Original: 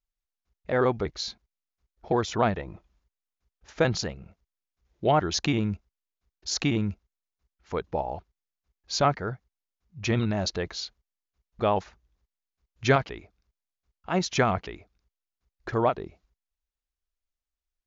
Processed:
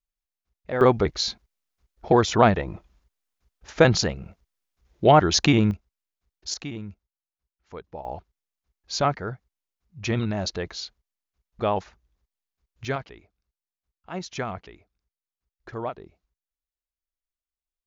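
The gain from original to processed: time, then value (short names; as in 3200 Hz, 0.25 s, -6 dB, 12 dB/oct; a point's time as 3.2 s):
-2 dB
from 0.81 s +7 dB
from 5.71 s 0 dB
from 6.54 s -9 dB
from 8.05 s 0 dB
from 12.85 s -7.5 dB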